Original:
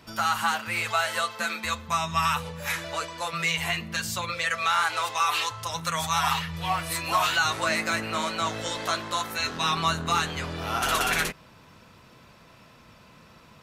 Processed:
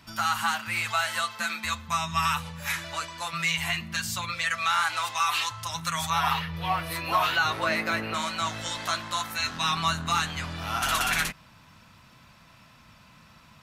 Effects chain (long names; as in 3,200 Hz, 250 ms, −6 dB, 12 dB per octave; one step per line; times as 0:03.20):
parametric band 460 Hz −13 dB 0.86 octaves, from 0:06.10 7,600 Hz, from 0:08.14 430 Hz